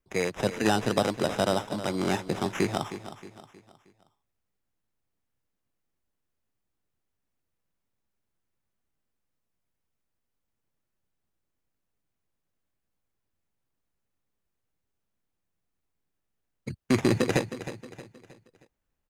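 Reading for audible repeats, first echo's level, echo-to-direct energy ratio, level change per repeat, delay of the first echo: 3, -12.5 dB, -11.5 dB, -7.5 dB, 314 ms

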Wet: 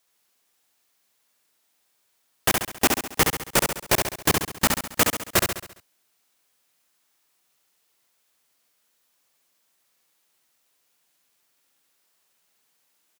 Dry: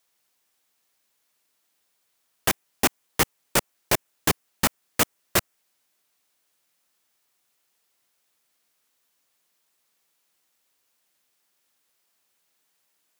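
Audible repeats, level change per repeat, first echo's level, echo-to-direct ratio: 6, -6.0 dB, -4.5 dB, -3.0 dB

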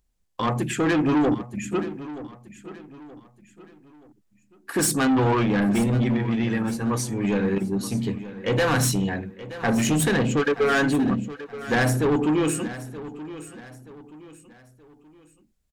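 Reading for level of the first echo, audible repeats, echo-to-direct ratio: -15.0 dB, 3, -14.5 dB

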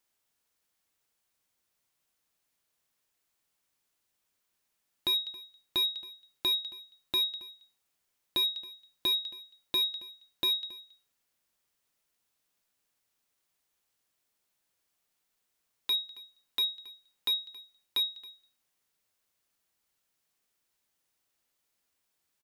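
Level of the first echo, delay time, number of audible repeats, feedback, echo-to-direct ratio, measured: -20.5 dB, 273 ms, 1, no regular repeats, -20.5 dB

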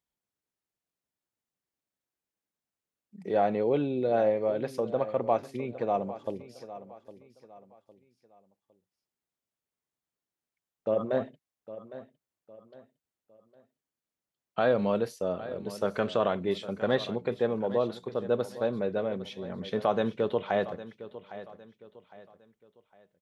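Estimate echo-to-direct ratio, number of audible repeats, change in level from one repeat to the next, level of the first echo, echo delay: -14.5 dB, 3, -9.0 dB, -15.0 dB, 808 ms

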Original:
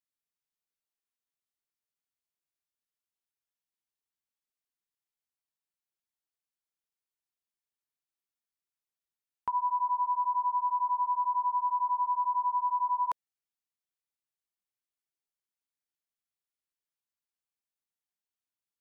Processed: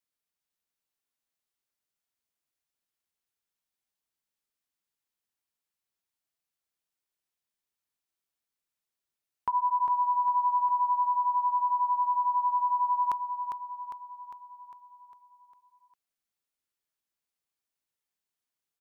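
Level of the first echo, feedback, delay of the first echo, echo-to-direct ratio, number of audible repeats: -7.0 dB, 56%, 403 ms, -5.5 dB, 6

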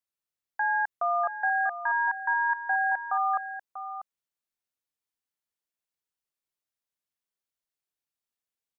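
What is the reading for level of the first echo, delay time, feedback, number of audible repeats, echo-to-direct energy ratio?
-11.0 dB, 641 ms, no regular repeats, 1, -11.0 dB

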